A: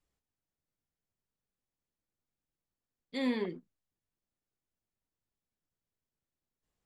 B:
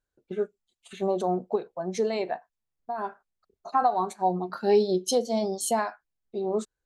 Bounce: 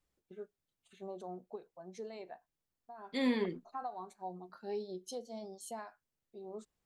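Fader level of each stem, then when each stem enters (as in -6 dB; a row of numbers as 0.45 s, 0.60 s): +0.5 dB, -18.5 dB; 0.00 s, 0.00 s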